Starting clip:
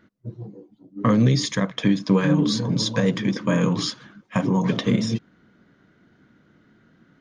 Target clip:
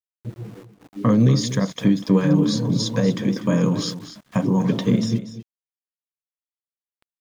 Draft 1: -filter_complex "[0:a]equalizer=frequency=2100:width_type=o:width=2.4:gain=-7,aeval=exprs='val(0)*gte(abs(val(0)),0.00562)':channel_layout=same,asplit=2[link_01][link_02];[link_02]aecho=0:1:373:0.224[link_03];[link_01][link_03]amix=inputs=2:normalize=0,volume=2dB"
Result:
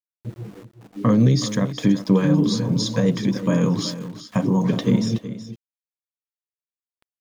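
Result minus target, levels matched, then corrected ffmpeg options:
echo 130 ms late
-filter_complex "[0:a]equalizer=frequency=2100:width_type=o:width=2.4:gain=-7,aeval=exprs='val(0)*gte(abs(val(0)),0.00562)':channel_layout=same,asplit=2[link_01][link_02];[link_02]aecho=0:1:243:0.224[link_03];[link_01][link_03]amix=inputs=2:normalize=0,volume=2dB"

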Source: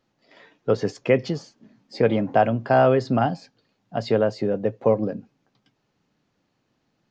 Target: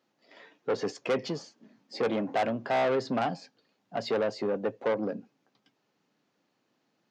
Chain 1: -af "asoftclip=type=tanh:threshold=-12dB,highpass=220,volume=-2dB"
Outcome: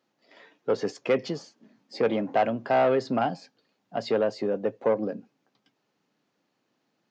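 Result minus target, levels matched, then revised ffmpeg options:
soft clipping: distortion −8 dB
-af "asoftclip=type=tanh:threshold=-20dB,highpass=220,volume=-2dB"

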